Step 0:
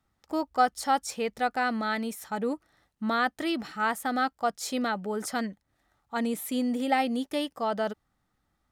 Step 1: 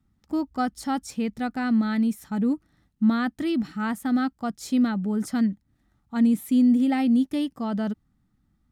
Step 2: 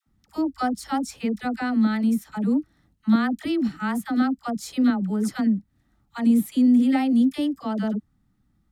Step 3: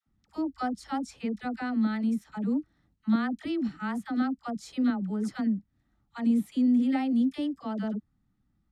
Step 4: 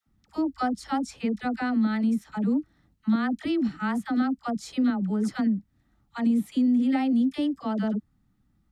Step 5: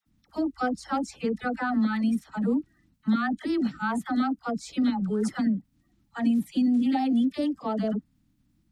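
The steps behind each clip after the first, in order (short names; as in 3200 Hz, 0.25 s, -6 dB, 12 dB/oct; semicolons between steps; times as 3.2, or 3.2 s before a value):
resonant low shelf 350 Hz +12 dB, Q 1.5; gain -3.5 dB
dispersion lows, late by 65 ms, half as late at 710 Hz; gain +1.5 dB
air absorption 54 m; gain -6 dB
compressor 2.5:1, threshold -26 dBFS, peak gain reduction 5 dB; gain +5 dB
bin magnitudes rounded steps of 30 dB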